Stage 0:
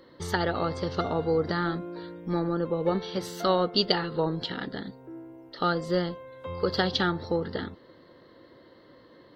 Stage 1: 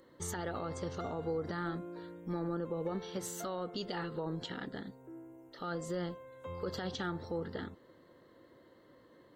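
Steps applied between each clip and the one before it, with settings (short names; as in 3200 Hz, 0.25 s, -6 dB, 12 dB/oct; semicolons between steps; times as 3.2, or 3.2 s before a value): resonant high shelf 5800 Hz +7 dB, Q 3; limiter -21 dBFS, peak gain reduction 11 dB; gain -7 dB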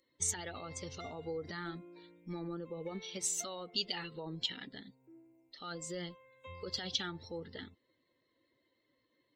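per-bin expansion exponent 1.5; band shelf 4400 Hz +14.5 dB 2.4 oct; gain -3 dB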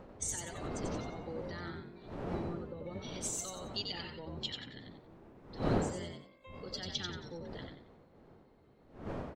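octaver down 1 oct, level 0 dB; wind noise 480 Hz -41 dBFS; frequency-shifting echo 91 ms, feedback 31%, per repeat +53 Hz, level -4.5 dB; gain -4 dB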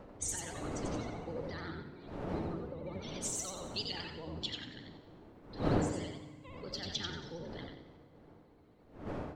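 vibrato 14 Hz 93 cents; FDN reverb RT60 1.5 s, low-frequency decay 1.35×, high-frequency decay 0.9×, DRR 10.5 dB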